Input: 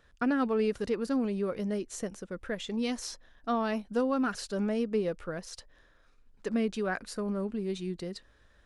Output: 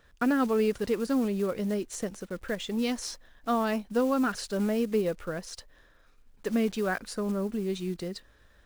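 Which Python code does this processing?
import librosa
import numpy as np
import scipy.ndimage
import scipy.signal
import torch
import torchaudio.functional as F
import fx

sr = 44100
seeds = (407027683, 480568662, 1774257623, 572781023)

y = fx.block_float(x, sr, bits=5)
y = F.gain(torch.from_numpy(y), 2.5).numpy()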